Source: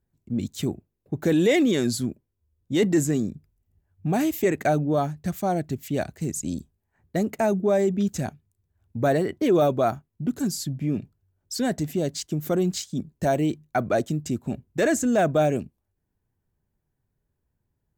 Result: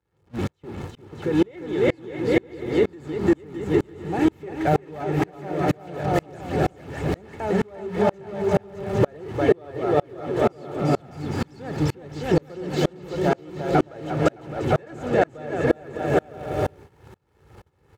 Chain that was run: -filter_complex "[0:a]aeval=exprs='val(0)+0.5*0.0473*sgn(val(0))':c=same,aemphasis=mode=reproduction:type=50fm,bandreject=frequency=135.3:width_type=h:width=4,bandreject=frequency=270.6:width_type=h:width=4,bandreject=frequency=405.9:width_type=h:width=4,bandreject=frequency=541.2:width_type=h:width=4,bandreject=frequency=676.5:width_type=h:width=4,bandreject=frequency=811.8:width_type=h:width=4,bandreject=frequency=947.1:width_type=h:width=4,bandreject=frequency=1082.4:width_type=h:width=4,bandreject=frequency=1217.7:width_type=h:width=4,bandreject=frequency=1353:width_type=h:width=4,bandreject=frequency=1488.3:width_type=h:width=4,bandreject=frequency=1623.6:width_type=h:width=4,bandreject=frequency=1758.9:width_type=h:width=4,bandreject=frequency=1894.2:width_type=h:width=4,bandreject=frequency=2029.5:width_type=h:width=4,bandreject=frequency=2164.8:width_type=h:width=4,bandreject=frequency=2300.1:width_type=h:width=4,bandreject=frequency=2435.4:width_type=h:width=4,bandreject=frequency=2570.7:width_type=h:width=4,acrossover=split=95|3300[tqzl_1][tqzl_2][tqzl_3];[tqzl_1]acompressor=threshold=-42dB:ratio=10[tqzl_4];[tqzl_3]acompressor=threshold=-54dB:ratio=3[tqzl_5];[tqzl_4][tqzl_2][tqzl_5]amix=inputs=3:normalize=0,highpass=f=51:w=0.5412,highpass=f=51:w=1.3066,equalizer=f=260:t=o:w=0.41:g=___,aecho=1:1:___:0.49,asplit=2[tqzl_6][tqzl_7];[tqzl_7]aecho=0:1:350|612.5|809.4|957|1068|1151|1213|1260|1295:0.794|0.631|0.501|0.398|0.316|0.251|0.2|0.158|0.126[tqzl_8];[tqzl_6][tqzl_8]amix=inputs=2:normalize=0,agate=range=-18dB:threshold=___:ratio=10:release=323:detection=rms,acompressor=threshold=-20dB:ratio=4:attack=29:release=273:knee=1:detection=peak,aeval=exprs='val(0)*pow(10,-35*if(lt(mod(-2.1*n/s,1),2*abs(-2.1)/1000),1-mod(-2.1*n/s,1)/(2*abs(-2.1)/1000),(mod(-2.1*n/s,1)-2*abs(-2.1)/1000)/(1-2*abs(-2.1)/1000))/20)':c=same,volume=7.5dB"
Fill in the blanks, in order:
-4.5, 2.3, -25dB